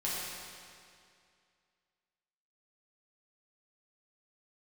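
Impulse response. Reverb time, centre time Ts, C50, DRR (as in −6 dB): 2.3 s, 147 ms, −2.5 dB, −8.0 dB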